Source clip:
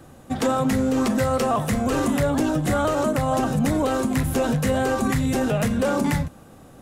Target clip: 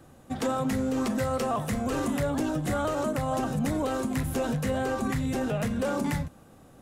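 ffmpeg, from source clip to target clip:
-filter_complex "[0:a]asettb=1/sr,asplit=3[a][b][c];[a]atrim=end=4.634[d];[b]atrim=start=4.63:end=5.76,asetpts=PTS-STARTPTS,afade=t=in:d=0.004:c=qsin,afade=t=out:st=1.126:d=0.004:c=qsin,equalizer=f=12k:t=o:w=1.9:g=-3[e];[c]atrim=start=5.756[f];[d][e]acrossfade=d=0.004:c1=hsin:c2=qsin[g];[g][f]acrossfade=d=0.004:c1=qsin:c2=hsin,volume=-6.5dB"

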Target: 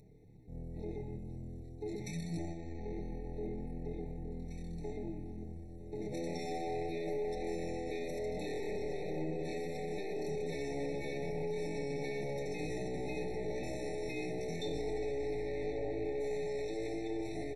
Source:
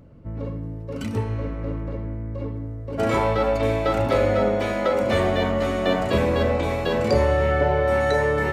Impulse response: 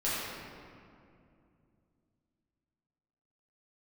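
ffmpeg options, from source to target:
-af "aeval=exprs='(tanh(11.2*val(0)+0.4)-tanh(0.4))/11.2':c=same,flanger=delay=4.4:depth=6.7:regen=86:speed=0.88:shape=triangular,agate=range=-10dB:threshold=-29dB:ratio=16:detection=peak,aecho=1:1:1180:0.2,acompressor=threshold=-40dB:ratio=2,atempo=0.64,bass=f=250:g=-4,treble=f=4k:g=12,alimiter=level_in=15.5dB:limit=-24dB:level=0:latency=1:release=12,volume=-15.5dB,aecho=1:1:5.1:0.52,asetrate=33472,aresample=44100,afftfilt=real='re*eq(mod(floor(b*sr/1024/890),2),0)':imag='im*eq(mod(floor(b*sr/1024/890),2),0)':win_size=1024:overlap=0.75,volume=8dB"

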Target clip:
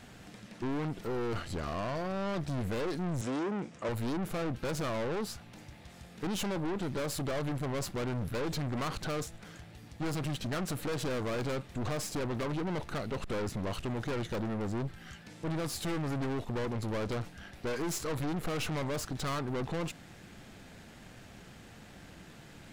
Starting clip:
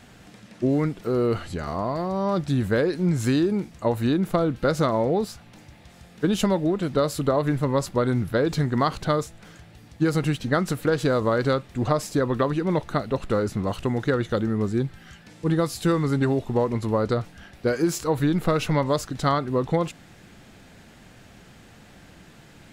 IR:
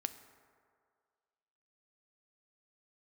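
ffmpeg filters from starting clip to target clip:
-filter_complex "[0:a]aeval=exprs='(tanh(39.8*val(0)+0.55)-tanh(0.55))/39.8':c=same,asettb=1/sr,asplit=3[a][b][c];[a]atrim=end=3.214[d];[b]atrim=start=3.21:end=3.89,asetpts=PTS-STARTPTS,afade=t=in:d=0.004:c=qsin,afade=t=out:st=0.676:d=0.004:c=qsin,highpass=150,equalizer=f=510:t=q:w=4:g=5,equalizer=f=1.3k:t=q:w=4:g=3,equalizer=f=4.3k:t=q:w=4:g=-6,lowpass=f=8.4k:w=0.5412,lowpass=f=8.4k:w=1.3066[e];[c]atrim=start=3.886[f];[d][e]acrossfade=d=0.004:c1=hsin:c2=qsin[g];[g][f]acrossfade=d=0.004:c1=qsin:c2=hsin"

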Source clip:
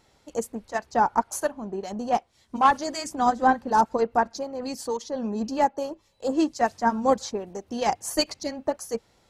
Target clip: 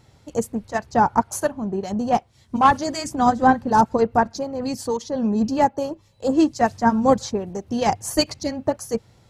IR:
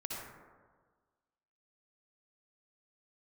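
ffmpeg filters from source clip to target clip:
-af "equalizer=f=110:t=o:w=1.5:g=15,volume=3dB"

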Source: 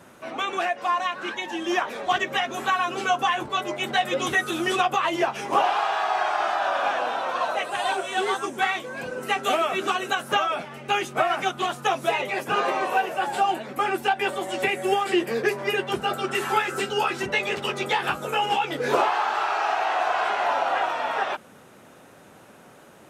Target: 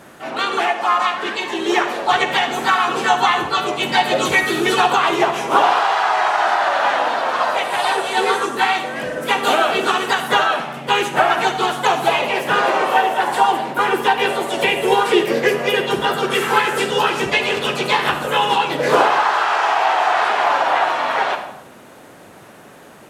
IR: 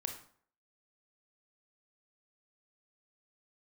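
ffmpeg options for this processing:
-filter_complex "[0:a]asplit=4[a][b][c][d];[b]asetrate=52444,aresample=44100,atempo=0.840896,volume=-4dB[e];[c]asetrate=55563,aresample=44100,atempo=0.793701,volume=-12dB[f];[d]asetrate=58866,aresample=44100,atempo=0.749154,volume=-18dB[g];[a][e][f][g]amix=inputs=4:normalize=0,asplit=2[h][i];[1:a]atrim=start_sample=2205,asetrate=26901,aresample=44100[j];[i][j]afir=irnorm=-1:irlink=0,volume=3dB[k];[h][k]amix=inputs=2:normalize=0,volume=-3dB"

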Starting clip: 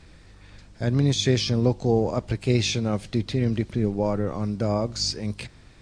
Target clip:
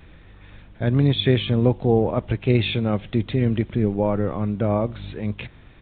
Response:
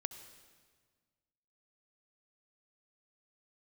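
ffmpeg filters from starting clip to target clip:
-af "aresample=8000,aresample=44100,volume=3dB"

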